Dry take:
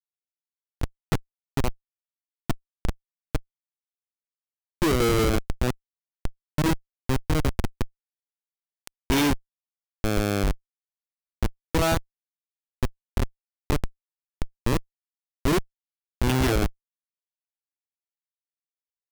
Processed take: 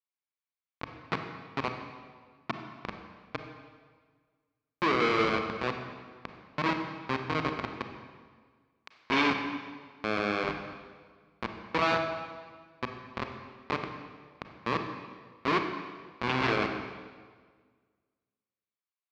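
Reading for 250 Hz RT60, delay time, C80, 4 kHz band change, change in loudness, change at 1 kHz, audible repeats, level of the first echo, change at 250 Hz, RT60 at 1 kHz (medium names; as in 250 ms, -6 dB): 1.8 s, no echo, 7.5 dB, -3.5 dB, -4.5 dB, +1.5 dB, no echo, no echo, -7.0 dB, 1.6 s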